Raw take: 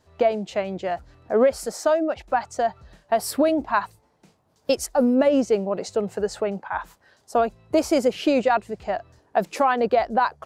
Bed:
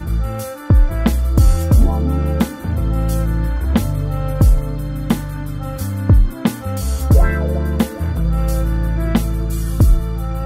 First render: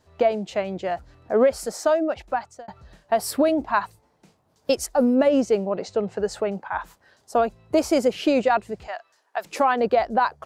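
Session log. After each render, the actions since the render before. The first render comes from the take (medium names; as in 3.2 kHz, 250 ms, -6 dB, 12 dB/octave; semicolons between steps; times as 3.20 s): 2.22–2.68 s: fade out; 5.71–6.23 s: low-pass 5.1 kHz; 8.87–9.45 s: high-pass 1 kHz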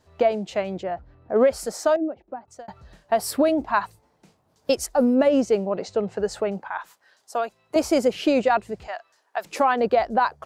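0.83–1.36 s: tape spacing loss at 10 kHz 33 dB; 1.96–2.48 s: band-pass filter 310 Hz, Q 1.6; 6.71–7.76 s: high-pass 1 kHz 6 dB/octave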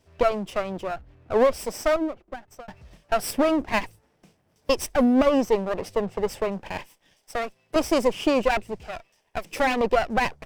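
comb filter that takes the minimum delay 0.37 ms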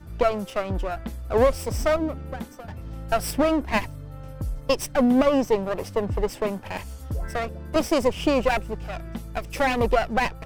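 add bed -18.5 dB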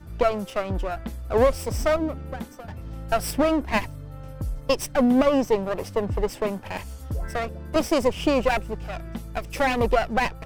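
no audible change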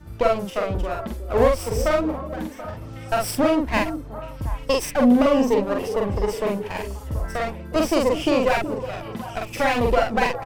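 doubling 45 ms -2 dB; repeats whose band climbs or falls 366 ms, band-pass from 370 Hz, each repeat 1.4 oct, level -8 dB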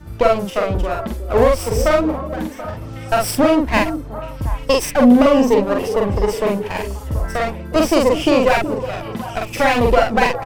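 trim +5.5 dB; peak limiter -2 dBFS, peak gain reduction 3 dB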